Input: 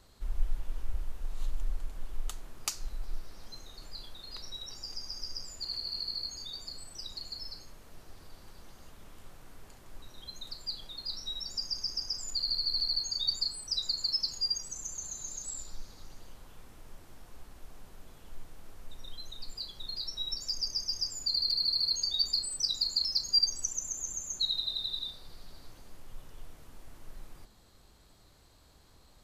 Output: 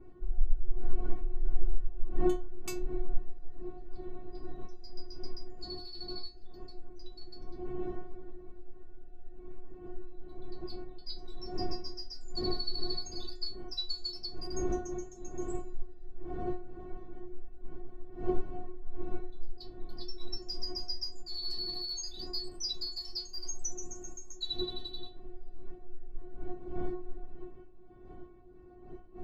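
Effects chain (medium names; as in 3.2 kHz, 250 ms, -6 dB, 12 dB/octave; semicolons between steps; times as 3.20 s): local Wiener filter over 41 samples; wind noise 250 Hz -42 dBFS; treble shelf 2.5 kHz -10 dB; inharmonic resonator 360 Hz, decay 0.29 s, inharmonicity 0.002; trim +17.5 dB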